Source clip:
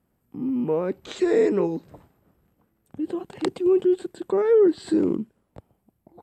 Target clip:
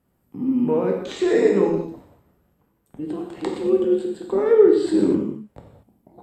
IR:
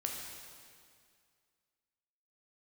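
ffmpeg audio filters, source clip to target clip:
-filter_complex "[0:a]asettb=1/sr,asplit=3[a][b][c];[a]atrim=end=1.694[d];[b]atrim=start=1.69:end=4.46,asetpts=PTS-STARTPTS,afade=t=in:d=0.004:c=qsin,afade=t=out:st=2.766:d=0.004:c=qsin,tremolo=f=150:d=0.571[e];[c]atrim=start=4.456[f];[d][e]acrossfade=d=0.004:c1=hsin:c2=qsin[g];[g][f]acrossfade=d=0.004:c1=qsin:c2=hsin[h];[1:a]atrim=start_sample=2205,afade=t=out:st=0.44:d=0.01,atrim=end_sample=19845,asetrate=70560,aresample=44100[i];[h][i]afir=irnorm=-1:irlink=0,volume=6.5dB"

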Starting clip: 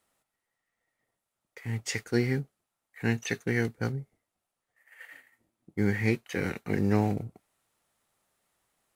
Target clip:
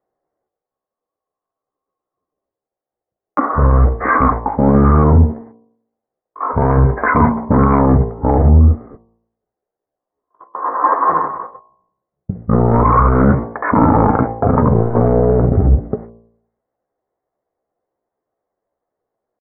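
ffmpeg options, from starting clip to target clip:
-af "aresample=8000,asoftclip=type=tanh:threshold=-25dB,aresample=44100,dynaudnorm=f=200:g=21:m=3.5dB,asetrate=25442,aresample=44100,agate=range=-35dB:threshold=-59dB:ratio=16:detection=peak,equalizer=f=590:w=0.75:g=15,areverse,acompressor=threshold=-31dB:ratio=8,areverse,bandreject=f=57.17:t=h:w=4,bandreject=f=114.34:t=h:w=4,bandreject=f=171.51:t=h:w=4,bandreject=f=228.68:t=h:w=4,bandreject=f=285.85:t=h:w=4,bandreject=f=343.02:t=h:w=4,bandreject=f=400.19:t=h:w=4,bandreject=f=457.36:t=h:w=4,bandreject=f=514.53:t=h:w=4,bandreject=f=571.7:t=h:w=4,bandreject=f=628.87:t=h:w=4,bandreject=f=686.04:t=h:w=4,bandreject=f=743.21:t=h:w=4,bandreject=f=800.38:t=h:w=4,bandreject=f=857.55:t=h:w=4,bandreject=f=914.72:t=h:w=4,bandreject=f=971.89:t=h:w=4,bandreject=f=1.02906k:t=h:w=4,bandreject=f=1.08623k:t=h:w=4,bandreject=f=1.1434k:t=h:w=4,atempo=0.8,tiltshelf=f=1.3k:g=4,alimiter=level_in=25dB:limit=-1dB:release=50:level=0:latency=1,volume=-1dB"

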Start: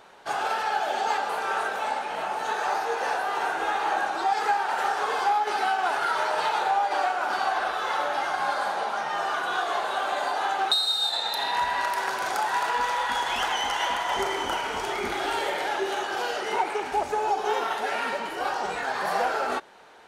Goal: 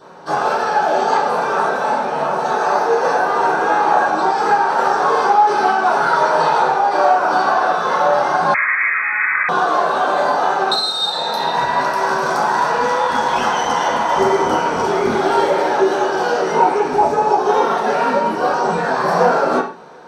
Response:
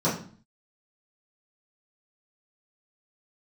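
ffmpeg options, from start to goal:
-filter_complex "[1:a]atrim=start_sample=2205,afade=t=out:st=0.22:d=0.01,atrim=end_sample=10143[a];[0:a][a]afir=irnorm=-1:irlink=0,asettb=1/sr,asplit=3[b][c][d];[b]atrim=end=8.544[e];[c]atrim=start=8.54:end=9.49,asetpts=PTS-STARTPTS,afade=t=in:d=0.004:c=qsin,afade=t=out:st=0.946:d=0.004:c=qsin,lowpass=f=2.3k:t=q:w=0.5098,lowpass=f=2.3k:t=q:w=0.6013,lowpass=f=2.3k:t=q:w=0.9,lowpass=f=2.3k:t=q:w=2.563,afreqshift=-2700[f];[d]atrim=start=9.486[g];[e][f]acrossfade=d=0.004:c1=hsin:c2=qsin[h];[h][g]acrossfade=d=0.004:c1=qsin:c2=hsin,volume=-3.5dB"

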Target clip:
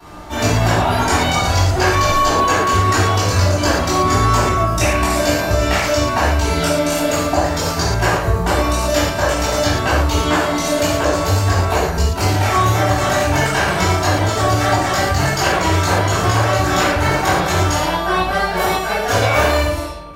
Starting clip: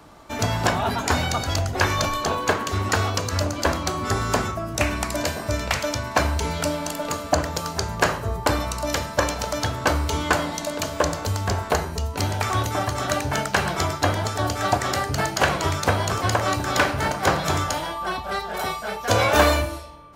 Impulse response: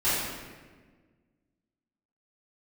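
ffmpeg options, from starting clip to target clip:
-filter_complex "[0:a]acompressor=threshold=-24dB:ratio=6[a];[1:a]atrim=start_sample=2205,atrim=end_sample=6615[b];[a][b]afir=irnorm=-1:irlink=0"

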